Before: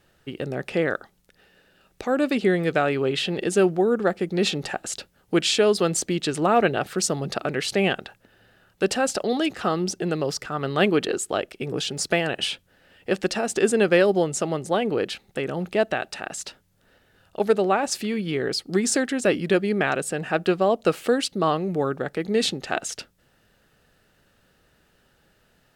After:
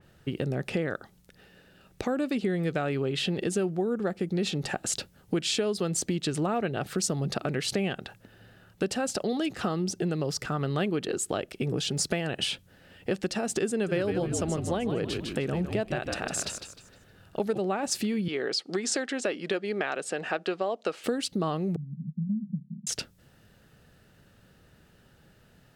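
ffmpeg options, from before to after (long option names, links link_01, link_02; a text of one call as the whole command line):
ffmpeg -i in.wav -filter_complex "[0:a]asettb=1/sr,asplit=3[link_01][link_02][link_03];[link_01]atrim=end=13.714[link_04];[link_02]atrim=start=13.71:end=17.59,asetpts=PTS-STARTPTS,afade=type=in:duration=0.004:curve=qsin,afade=type=out:start_time=3.876:duration=0.004:curve=qsin,asplit=5[link_05][link_06][link_07][link_08][link_09];[link_06]adelay=154,afreqshift=-65,volume=-8dB[link_10];[link_07]adelay=308,afreqshift=-130,volume=-17.1dB[link_11];[link_08]adelay=462,afreqshift=-195,volume=-26.2dB[link_12];[link_09]adelay=616,afreqshift=-260,volume=-35.4dB[link_13];[link_05][link_10][link_11][link_12][link_13]amix=inputs=5:normalize=0,atrim=end_sample=171108[link_14];[link_03]atrim=start=17.586[link_15];[link_04][link_14]acrossfade=duration=0.004:curve1=hsin:curve2=qsin[link_16];[link_16][link_15]acrossfade=duration=0.004:curve1=qsin:curve2=hsin,asettb=1/sr,asplit=3[link_17][link_18][link_19];[link_17]atrim=end=18.284[link_20];[link_18]atrim=start=18.28:end=21.04,asetpts=PTS-STARTPTS,afade=type=in:duration=0.004:curve=qsin,afade=type=out:start_time=2.756:duration=0.004:curve=qsin,highpass=430,lowpass=6000[link_21];[link_19]atrim=start=21.036[link_22];[link_20][link_21]acrossfade=duration=0.004:curve1=hsin:curve2=qsin[link_23];[link_23][link_22]acrossfade=duration=0.004:curve1=qsin:curve2=hsin,asettb=1/sr,asplit=3[link_24][link_25][link_26];[link_24]atrim=end=21.764[link_27];[link_25]atrim=start=21.76:end=22.87,asetpts=PTS-STARTPTS,afade=type=in:duration=0.004:curve=qsin,afade=type=out:start_time=1.106:duration=0.004:curve=qsin,asuperpass=centerf=180:order=8:qfactor=2.6[link_28];[link_26]atrim=start=22.866[link_29];[link_27][link_28]acrossfade=duration=0.004:curve1=hsin:curve2=qsin[link_30];[link_30][link_29]acrossfade=duration=0.004:curve1=qsin:curve2=hsin,equalizer=frequency=120:width_type=o:width=2.4:gain=8.5,acompressor=threshold=-27dB:ratio=4,adynamicequalizer=threshold=0.00631:dfrequency=3500:dqfactor=0.7:tfrequency=3500:tqfactor=0.7:attack=5:release=100:ratio=0.375:range=1.5:mode=boostabove:tftype=highshelf" out.wav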